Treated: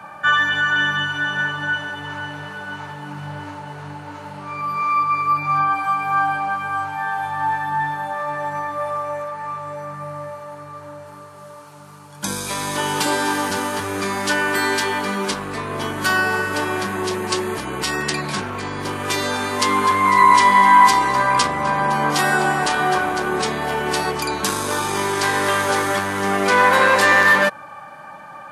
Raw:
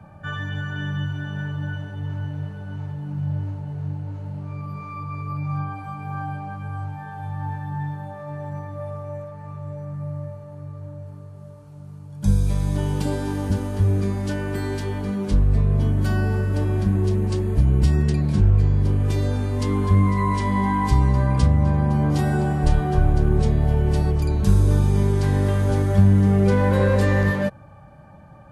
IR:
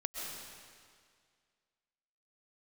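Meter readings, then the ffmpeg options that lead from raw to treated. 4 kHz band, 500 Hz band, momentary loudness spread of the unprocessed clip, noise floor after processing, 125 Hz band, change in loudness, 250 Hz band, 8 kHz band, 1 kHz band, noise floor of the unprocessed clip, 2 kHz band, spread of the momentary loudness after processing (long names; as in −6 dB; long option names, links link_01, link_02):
+15.5 dB, +3.5 dB, 15 LU, −39 dBFS, −14.5 dB, +3.0 dB, −3.5 dB, +15.0 dB, +14.5 dB, −42 dBFS, +16.0 dB, 19 LU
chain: -af "apsyclip=18.5dB,highpass=360,lowshelf=frequency=800:width_type=q:width=1.5:gain=-7,volume=-2.5dB"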